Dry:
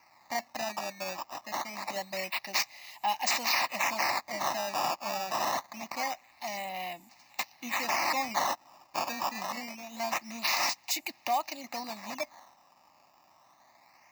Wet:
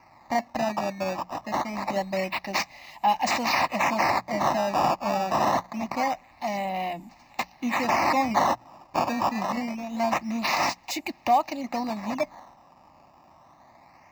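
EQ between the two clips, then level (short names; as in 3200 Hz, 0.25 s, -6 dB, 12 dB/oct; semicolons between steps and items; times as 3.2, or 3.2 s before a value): tilt -3.5 dB/oct; notches 60/120/180 Hz; +7.0 dB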